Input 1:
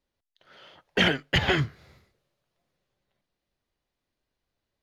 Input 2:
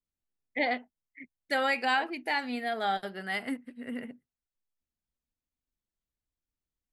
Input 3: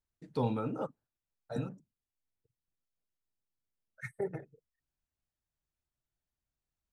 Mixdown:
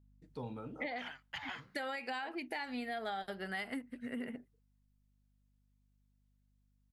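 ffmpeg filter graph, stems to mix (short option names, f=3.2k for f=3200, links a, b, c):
-filter_complex "[0:a]lowshelf=f=620:t=q:w=3:g=-12.5,volume=-19.5dB[a];[1:a]alimiter=limit=-23dB:level=0:latency=1:release=155,adelay=250,volume=0dB[b];[2:a]aeval=exprs='val(0)+0.002*(sin(2*PI*50*n/s)+sin(2*PI*2*50*n/s)/2+sin(2*PI*3*50*n/s)/3+sin(2*PI*4*50*n/s)/4+sin(2*PI*5*50*n/s)/5)':c=same,volume=2dB,afade=t=out:st=0.81:d=0.64:silence=0.223872,afade=t=in:st=2.56:d=0.2:silence=0.237137,afade=t=out:st=3.65:d=0.52:silence=0.421697,asplit=2[c][d];[d]apad=whole_len=212957[e];[a][e]sidechaincompress=threshold=-55dB:ratio=8:attack=27:release=224[f];[f][b][c]amix=inputs=3:normalize=0,acompressor=threshold=-37dB:ratio=6"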